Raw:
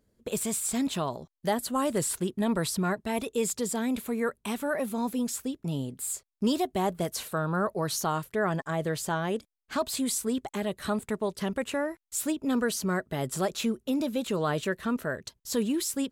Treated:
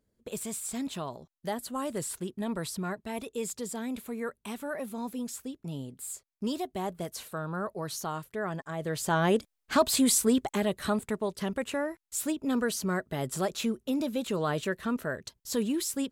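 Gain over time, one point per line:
8.75 s -6 dB
9.25 s +5.5 dB
10.25 s +5.5 dB
11.24 s -1.5 dB

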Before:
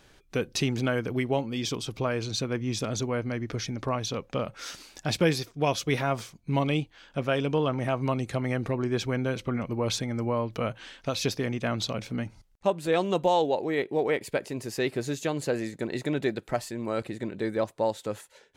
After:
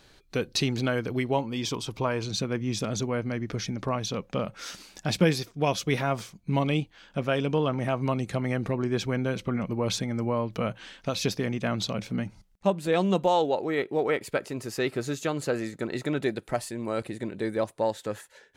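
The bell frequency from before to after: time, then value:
bell +8.5 dB 0.26 oct
4200 Hz
from 1.34 s 960 Hz
from 2.24 s 190 Hz
from 13.24 s 1300 Hz
from 16.23 s 9600 Hz
from 17.82 s 1700 Hz

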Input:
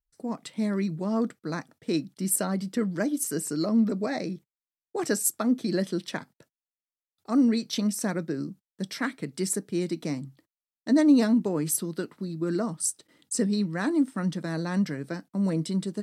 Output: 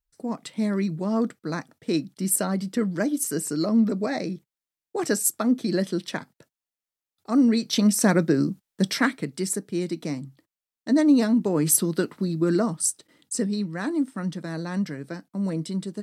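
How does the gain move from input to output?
7.44 s +2.5 dB
8.13 s +10 dB
8.89 s +10 dB
9.43 s +1 dB
11.32 s +1 dB
11.73 s +7.5 dB
12.29 s +7.5 dB
13.56 s -1 dB

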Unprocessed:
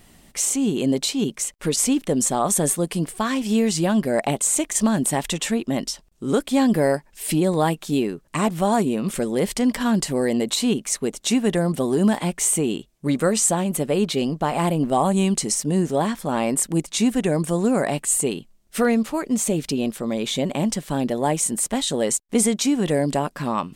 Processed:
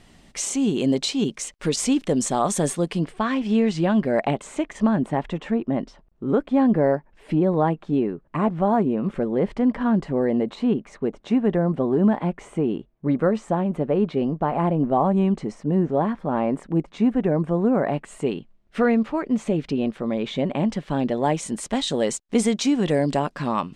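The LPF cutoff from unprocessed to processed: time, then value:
2.67 s 6100 Hz
3.18 s 2800 Hz
4.2 s 2800 Hz
5.29 s 1400 Hz
17.74 s 1400 Hz
18.27 s 2400 Hz
20.52 s 2400 Hz
21.78 s 5300 Hz

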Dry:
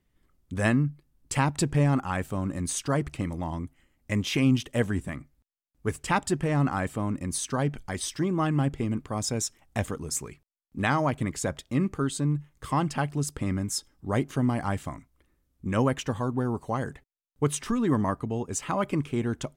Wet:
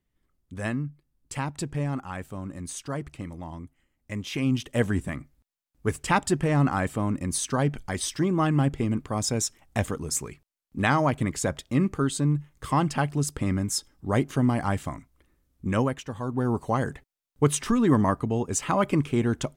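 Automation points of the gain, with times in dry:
4.23 s -6 dB
4.87 s +2.5 dB
15.72 s +2.5 dB
16.05 s -7 dB
16.52 s +4 dB

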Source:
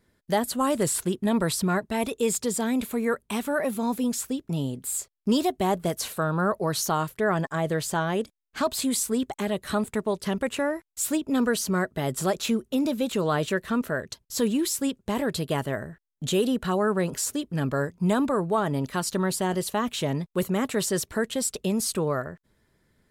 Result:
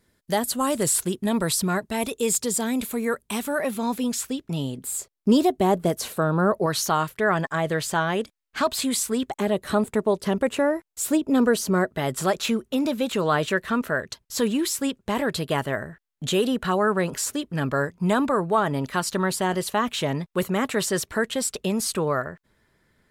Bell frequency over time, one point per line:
bell +5.5 dB 2.7 oct
11000 Hz
from 3.63 s 2700 Hz
from 4.78 s 340 Hz
from 6.66 s 2000 Hz
from 9.31 s 470 Hz
from 11.92 s 1600 Hz

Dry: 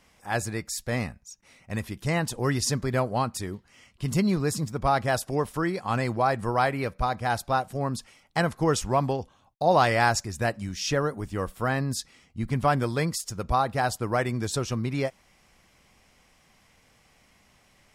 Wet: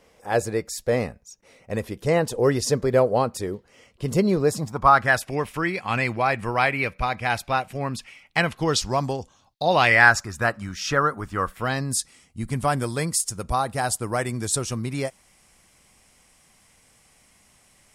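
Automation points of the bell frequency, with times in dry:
bell +13.5 dB 0.85 oct
4.4 s 480 Hz
5.28 s 2400 Hz
8.43 s 2400 Hz
9.18 s 8200 Hz
10.2 s 1300 Hz
11.48 s 1300 Hz
11.89 s 9200 Hz

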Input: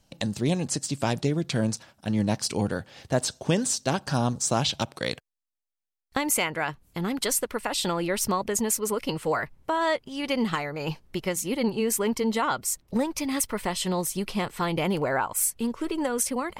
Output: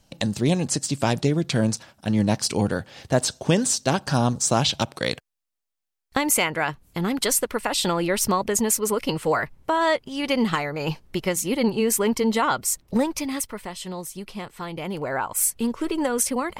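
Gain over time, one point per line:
13.07 s +4 dB
13.66 s -6 dB
14.78 s -6 dB
15.46 s +3.5 dB

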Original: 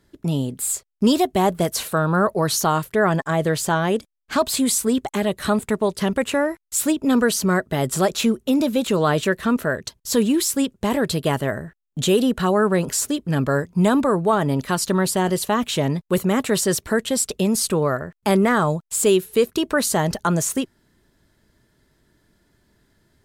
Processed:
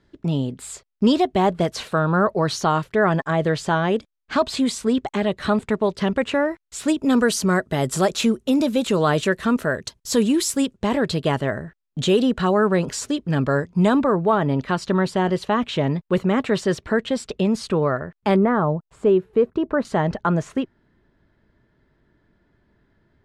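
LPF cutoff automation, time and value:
4400 Hz
from 6.88 s 9200 Hz
from 10.76 s 5400 Hz
from 13.99 s 3300 Hz
from 18.36 s 1200 Hz
from 19.85 s 2300 Hz

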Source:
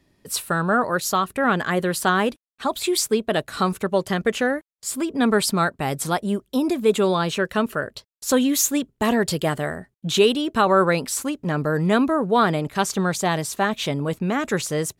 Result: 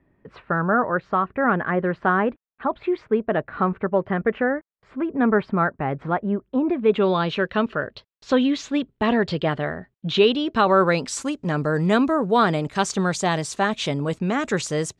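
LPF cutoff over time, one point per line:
LPF 24 dB/oct
6.63 s 2000 Hz
7.16 s 3900 Hz
10.08 s 3900 Hz
11.28 s 8100 Hz

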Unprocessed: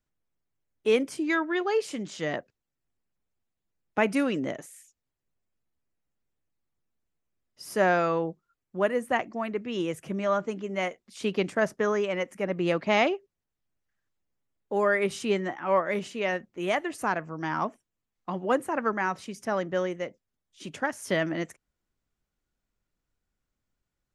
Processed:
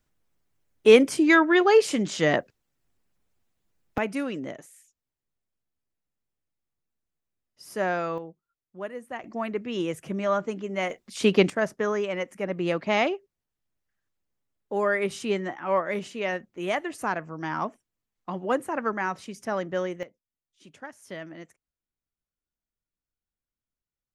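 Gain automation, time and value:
+8.5 dB
from 3.98 s -4 dB
from 8.18 s -10 dB
from 9.24 s +1 dB
from 10.9 s +8 dB
from 11.5 s -0.5 dB
from 20.03 s -12 dB

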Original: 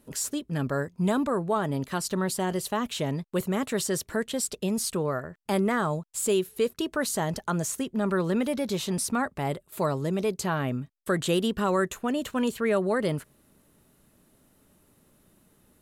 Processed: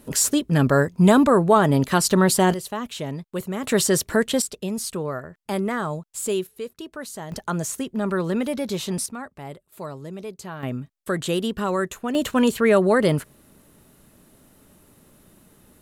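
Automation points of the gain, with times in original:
+10.5 dB
from 2.54 s -1 dB
from 3.64 s +8.5 dB
from 4.42 s 0 dB
from 6.47 s -7 dB
from 7.32 s +2 dB
from 9.06 s -7.5 dB
from 10.63 s +1 dB
from 12.15 s +8 dB

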